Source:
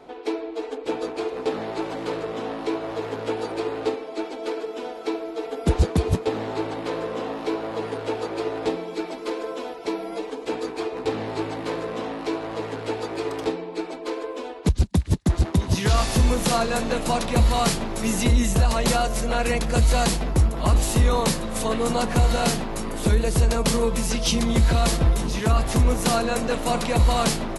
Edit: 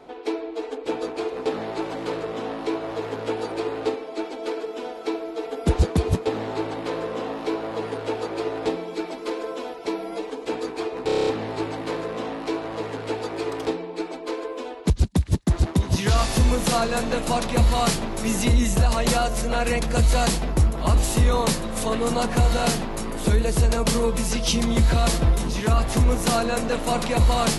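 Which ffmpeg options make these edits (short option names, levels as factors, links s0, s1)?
-filter_complex "[0:a]asplit=8[s0][s1][s2][s3][s4][s5][s6][s7];[s0]atrim=end=11.092[s8];[s1]atrim=start=11.058:end=11.092[s9];[s2]atrim=start=11.058:end=11.092[s10];[s3]atrim=start=11.058:end=11.092[s11];[s4]atrim=start=11.058:end=11.092[s12];[s5]atrim=start=11.058:end=11.092[s13];[s6]atrim=start=11.058:end=11.092[s14];[s7]atrim=start=11.058[s15];[s8][s9]acrossfade=d=0.004:c1=hsin:c2=hsin[s16];[s16][s10]acrossfade=d=0.004:c1=hsin:c2=hsin[s17];[s17][s11]acrossfade=d=0.004:c1=hsin:c2=hsin[s18];[s18][s12]acrossfade=d=0.004:c1=hsin:c2=hsin[s19];[s19][s13]acrossfade=d=0.004:c1=hsin:c2=hsin[s20];[s20][s14]acrossfade=d=0.004:c1=hsin:c2=hsin[s21];[s21][s15]acrossfade=d=0.004:c1=hsin:c2=hsin"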